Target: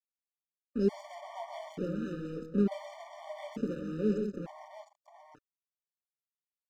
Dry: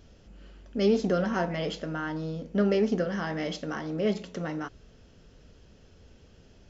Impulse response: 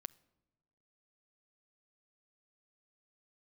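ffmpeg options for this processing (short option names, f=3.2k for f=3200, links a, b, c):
-filter_complex "[0:a]afwtdn=0.0141,firequalizer=gain_entry='entry(150,0);entry(220,5);entry(550,-7);entry(1600,-19);entry(3500,-3);entry(8400,11)':delay=0.05:min_phase=1,acrossover=split=400[a][b];[b]acontrast=76[c];[a][c]amix=inputs=2:normalize=0,aeval=exprs='sgn(val(0))*max(abs(val(0))-0.015,0)':c=same,aecho=1:1:127|181|708:0.531|0.355|0.562,afftfilt=real='re*gt(sin(2*PI*0.56*pts/sr)*(1-2*mod(floor(b*sr/1024/600),2)),0)':imag='im*gt(sin(2*PI*0.56*pts/sr)*(1-2*mod(floor(b*sr/1024/600),2)),0)':win_size=1024:overlap=0.75,volume=-4.5dB"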